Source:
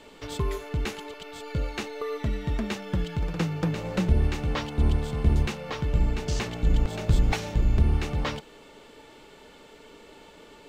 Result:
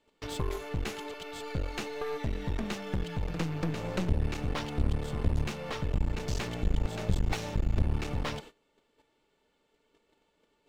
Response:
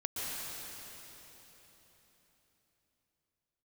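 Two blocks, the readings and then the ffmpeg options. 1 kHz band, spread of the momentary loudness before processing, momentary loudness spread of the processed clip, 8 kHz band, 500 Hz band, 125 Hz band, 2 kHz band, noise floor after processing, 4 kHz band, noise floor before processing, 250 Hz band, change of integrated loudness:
−3.5 dB, 9 LU, 5 LU, −3.5 dB, −4.0 dB, −6.0 dB, −4.0 dB, −74 dBFS, −4.0 dB, −51 dBFS, −5.0 dB, −6.0 dB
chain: -filter_complex "[0:a]asplit=2[link_01][link_02];[link_02]acompressor=threshold=-30dB:ratio=6,volume=-2dB[link_03];[link_01][link_03]amix=inputs=2:normalize=0,agate=range=-23dB:threshold=-40dB:ratio=16:detection=peak,aeval=exprs='clip(val(0),-1,0.0237)':channel_layout=same,volume=-5dB"

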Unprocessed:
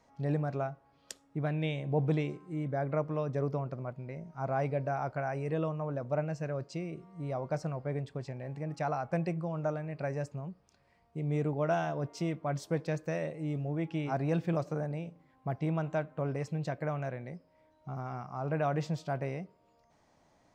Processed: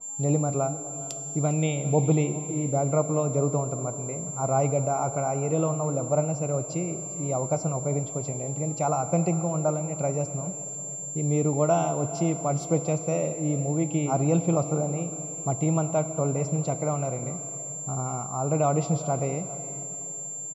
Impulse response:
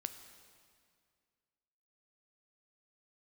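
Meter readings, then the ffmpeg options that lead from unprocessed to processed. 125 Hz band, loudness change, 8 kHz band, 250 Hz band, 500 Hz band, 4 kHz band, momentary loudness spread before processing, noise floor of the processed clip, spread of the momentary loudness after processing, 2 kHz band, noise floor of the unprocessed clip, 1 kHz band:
+7.5 dB, +8.0 dB, +28.5 dB, +8.0 dB, +8.0 dB, can't be measured, 10 LU, −36 dBFS, 8 LU, −1.0 dB, −68 dBFS, +7.5 dB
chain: -filter_complex "[0:a]asplit=2[link_01][link_02];[1:a]atrim=start_sample=2205,asetrate=22491,aresample=44100[link_03];[link_02][link_03]afir=irnorm=-1:irlink=0,volume=2dB[link_04];[link_01][link_04]amix=inputs=2:normalize=0,aeval=exprs='val(0)+0.0282*sin(2*PI*7300*n/s)':channel_layout=same,asuperstop=centerf=1700:order=4:qfactor=2.2,aecho=1:1:404:0.112,adynamicequalizer=threshold=0.00708:dfrequency=2100:dqfactor=0.7:tfrequency=2100:tqfactor=0.7:attack=5:release=100:ratio=0.375:range=3:mode=cutabove:tftype=highshelf"

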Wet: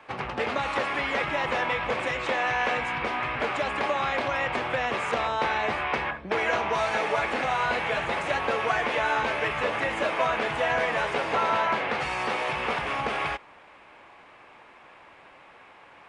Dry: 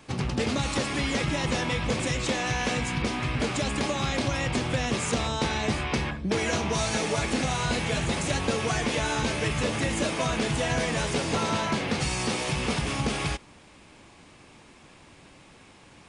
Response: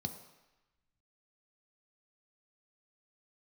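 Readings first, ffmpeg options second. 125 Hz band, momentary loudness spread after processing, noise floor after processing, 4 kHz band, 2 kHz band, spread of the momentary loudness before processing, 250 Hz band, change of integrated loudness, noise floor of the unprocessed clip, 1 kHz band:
−12.0 dB, 3 LU, −52 dBFS, −4.0 dB, +4.0 dB, 2 LU, −9.0 dB, +0.5 dB, −53 dBFS, +5.5 dB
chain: -filter_complex "[0:a]acrossover=split=500 2600:gain=0.112 1 0.0708[link_01][link_02][link_03];[link_01][link_02][link_03]amix=inputs=3:normalize=0,volume=6.5dB"

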